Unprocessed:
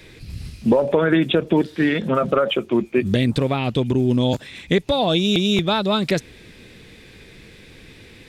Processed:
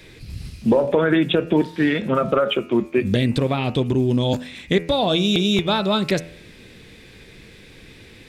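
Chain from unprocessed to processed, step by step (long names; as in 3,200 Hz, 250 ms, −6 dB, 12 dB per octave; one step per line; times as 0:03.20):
hum removal 83.15 Hz, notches 35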